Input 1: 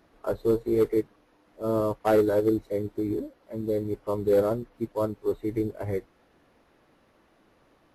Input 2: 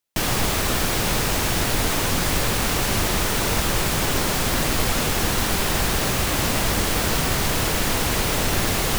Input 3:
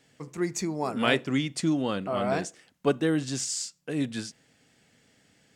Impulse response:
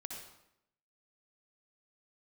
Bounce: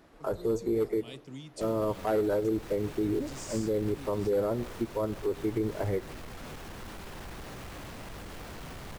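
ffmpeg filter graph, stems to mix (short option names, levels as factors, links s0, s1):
-filter_complex "[0:a]volume=1.33,asplit=2[s0][s1];[s1]volume=0.133[s2];[1:a]highshelf=f=3400:g=-10,alimiter=limit=0.168:level=0:latency=1:release=175,asoftclip=type=tanh:threshold=0.0668,adelay=1450,volume=0.2[s3];[2:a]equalizer=f=1600:w=1.4:g=-12.5,acrossover=split=170|3000[s4][s5][s6];[s5]acompressor=threshold=0.0158:ratio=3[s7];[s4][s7][s6]amix=inputs=3:normalize=0,volume=0.266[s8];[3:a]atrim=start_sample=2205[s9];[s2][s9]afir=irnorm=-1:irlink=0[s10];[s0][s3][s8][s10]amix=inputs=4:normalize=0,alimiter=limit=0.0891:level=0:latency=1:release=148"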